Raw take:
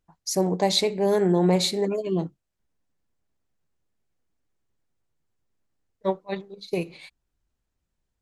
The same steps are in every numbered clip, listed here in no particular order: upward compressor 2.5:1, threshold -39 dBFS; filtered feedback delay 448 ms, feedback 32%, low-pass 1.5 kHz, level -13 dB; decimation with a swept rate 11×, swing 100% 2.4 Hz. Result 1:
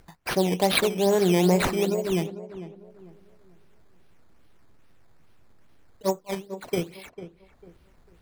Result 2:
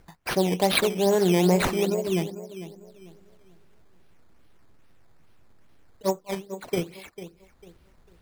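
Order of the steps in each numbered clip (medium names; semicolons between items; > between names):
decimation with a swept rate > upward compressor > filtered feedback delay; upward compressor > filtered feedback delay > decimation with a swept rate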